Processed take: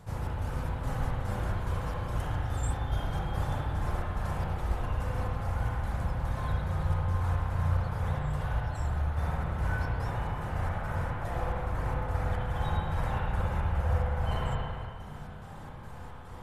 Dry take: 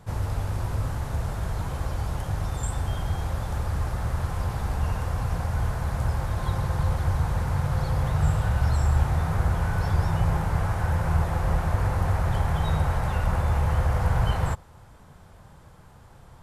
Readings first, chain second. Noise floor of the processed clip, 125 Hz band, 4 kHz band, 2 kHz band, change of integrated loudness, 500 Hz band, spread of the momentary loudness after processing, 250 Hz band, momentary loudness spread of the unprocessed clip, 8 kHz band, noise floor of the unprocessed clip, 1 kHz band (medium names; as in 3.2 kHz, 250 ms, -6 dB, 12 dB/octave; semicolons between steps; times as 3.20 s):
-43 dBFS, -6.5 dB, -5.5 dB, -4.0 dB, -6.0 dB, -3.5 dB, 5 LU, -5.5 dB, 6 LU, no reading, -50 dBFS, -4.0 dB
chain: reverb removal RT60 1.1 s; reverse; compression 6:1, threshold -36 dBFS, peak gain reduction 17 dB; reverse; square tremolo 2.4 Hz, depth 60%, duty 65%; spring tank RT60 2.3 s, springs 34/54/58 ms, chirp 75 ms, DRR -6 dB; trim +4 dB